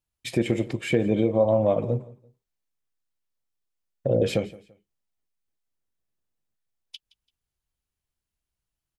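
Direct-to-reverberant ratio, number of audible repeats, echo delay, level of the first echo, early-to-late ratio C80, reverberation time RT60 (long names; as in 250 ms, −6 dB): no reverb audible, 2, 169 ms, −21.0 dB, no reverb audible, no reverb audible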